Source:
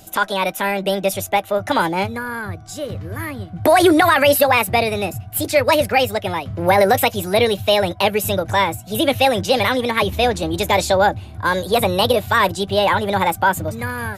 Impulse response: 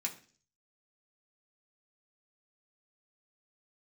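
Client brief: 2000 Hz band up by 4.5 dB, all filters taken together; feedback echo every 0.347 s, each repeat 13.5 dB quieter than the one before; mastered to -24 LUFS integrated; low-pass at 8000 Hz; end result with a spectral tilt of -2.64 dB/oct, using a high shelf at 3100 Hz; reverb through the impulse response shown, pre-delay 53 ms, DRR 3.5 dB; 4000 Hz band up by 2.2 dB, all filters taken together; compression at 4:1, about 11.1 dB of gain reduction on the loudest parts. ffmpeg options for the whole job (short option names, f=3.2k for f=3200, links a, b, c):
-filter_complex "[0:a]lowpass=8k,equalizer=f=2k:t=o:g=6.5,highshelf=f=3.1k:g=-5,equalizer=f=4k:t=o:g=4,acompressor=threshold=-22dB:ratio=4,aecho=1:1:347|694:0.211|0.0444,asplit=2[a][b];[1:a]atrim=start_sample=2205,adelay=53[c];[b][c]afir=irnorm=-1:irlink=0,volume=-4.5dB[d];[a][d]amix=inputs=2:normalize=0,volume=-0.5dB"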